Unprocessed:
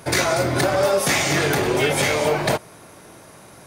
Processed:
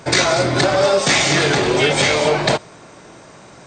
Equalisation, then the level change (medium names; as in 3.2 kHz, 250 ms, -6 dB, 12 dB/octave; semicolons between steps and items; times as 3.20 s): peaking EQ 89 Hz -9 dB 0.25 oct; dynamic bell 3.9 kHz, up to +5 dB, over -39 dBFS, Q 1.7; brick-wall FIR low-pass 8.7 kHz; +3.5 dB